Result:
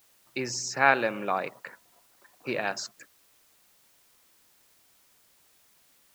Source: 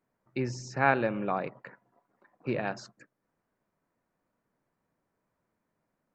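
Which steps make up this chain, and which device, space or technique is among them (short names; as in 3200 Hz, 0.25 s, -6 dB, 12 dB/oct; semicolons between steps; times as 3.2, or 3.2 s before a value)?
turntable without a phono preamp (RIAA curve recording; white noise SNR 30 dB); gain +3.5 dB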